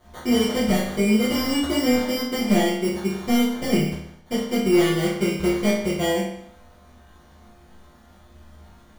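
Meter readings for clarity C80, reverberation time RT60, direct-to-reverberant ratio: 6.5 dB, 0.70 s, −11.0 dB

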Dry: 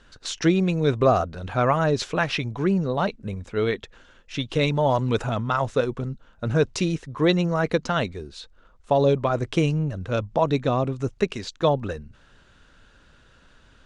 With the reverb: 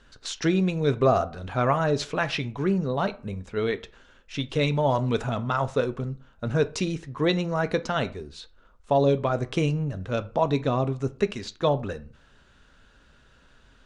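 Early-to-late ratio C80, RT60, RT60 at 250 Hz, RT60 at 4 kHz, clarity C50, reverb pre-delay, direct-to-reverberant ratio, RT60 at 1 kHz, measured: 24.0 dB, 0.40 s, 0.40 s, 0.25 s, 19.0 dB, 4 ms, 11.0 dB, 0.45 s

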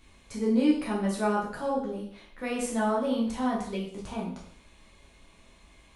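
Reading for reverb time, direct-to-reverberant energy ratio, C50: 0.60 s, −5.0 dB, 5.0 dB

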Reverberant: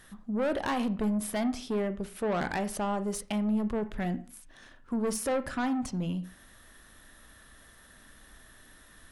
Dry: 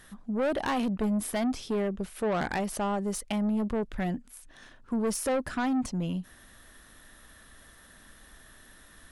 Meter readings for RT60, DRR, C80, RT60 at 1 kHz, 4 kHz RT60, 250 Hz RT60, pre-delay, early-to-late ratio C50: 0.40 s, 11.5 dB, 20.0 dB, 0.45 s, 0.35 s, 0.45 s, 26 ms, 16.0 dB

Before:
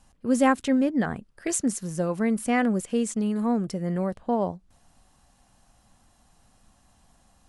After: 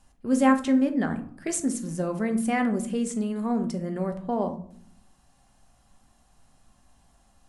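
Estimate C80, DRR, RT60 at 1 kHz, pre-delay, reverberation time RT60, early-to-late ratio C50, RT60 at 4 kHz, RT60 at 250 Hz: 17.0 dB, 6.0 dB, 0.55 s, 3 ms, 0.60 s, 12.5 dB, 0.30 s, 0.95 s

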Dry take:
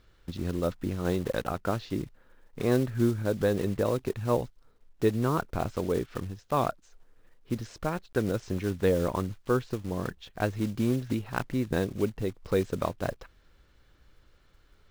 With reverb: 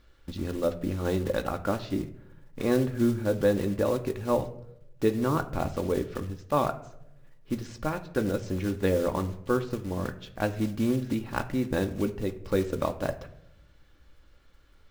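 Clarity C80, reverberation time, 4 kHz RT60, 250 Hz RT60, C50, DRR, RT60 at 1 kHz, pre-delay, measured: 17.5 dB, 0.80 s, 0.45 s, 1.1 s, 14.0 dB, 6.0 dB, 0.70 s, 3 ms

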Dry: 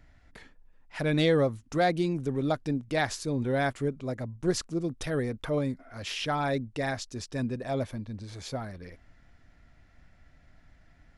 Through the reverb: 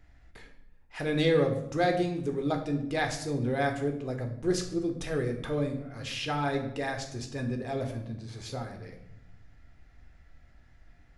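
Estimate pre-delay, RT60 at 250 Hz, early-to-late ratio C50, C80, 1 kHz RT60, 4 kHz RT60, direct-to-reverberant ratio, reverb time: 14 ms, 1.4 s, 8.5 dB, 11.5 dB, 0.75 s, 0.60 s, 3.5 dB, 0.85 s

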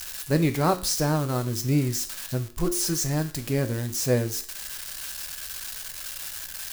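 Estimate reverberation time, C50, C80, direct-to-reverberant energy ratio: 0.50 s, 14.0 dB, 17.5 dB, 7.0 dB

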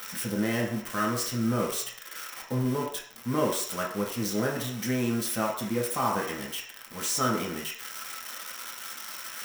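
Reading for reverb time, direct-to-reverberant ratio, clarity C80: 0.60 s, −3.0 dB, 9.0 dB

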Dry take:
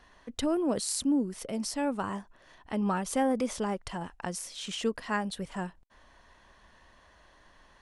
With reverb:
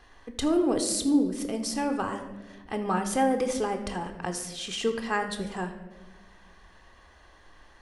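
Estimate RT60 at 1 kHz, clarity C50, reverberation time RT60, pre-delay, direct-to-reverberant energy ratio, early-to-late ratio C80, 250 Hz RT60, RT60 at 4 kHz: 1.0 s, 9.0 dB, 1.3 s, 3 ms, 6.0 dB, 10.5 dB, 1.7 s, 0.80 s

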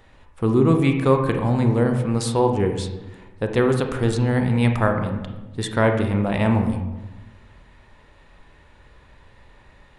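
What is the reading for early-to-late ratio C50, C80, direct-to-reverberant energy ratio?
7.0 dB, 9.0 dB, 4.5 dB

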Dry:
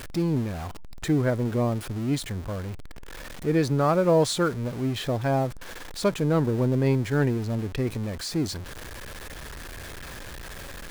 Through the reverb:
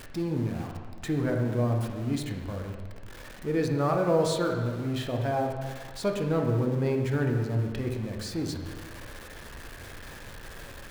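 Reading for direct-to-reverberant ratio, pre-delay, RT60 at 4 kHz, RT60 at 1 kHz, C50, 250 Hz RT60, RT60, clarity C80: 1.0 dB, 5 ms, 1.4 s, 1.5 s, 4.0 dB, 1.5 s, 1.5 s, 5.5 dB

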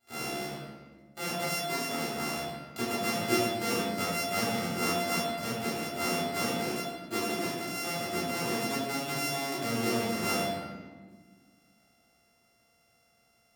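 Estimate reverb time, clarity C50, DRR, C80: 1.5 s, −1.0 dB, −9.0 dB, 1.5 dB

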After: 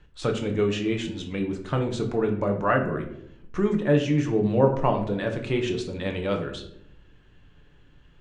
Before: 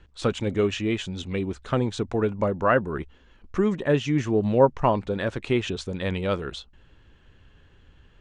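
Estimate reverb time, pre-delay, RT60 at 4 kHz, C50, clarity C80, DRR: 0.75 s, 6 ms, 0.40 s, 8.5 dB, 12.0 dB, 2.5 dB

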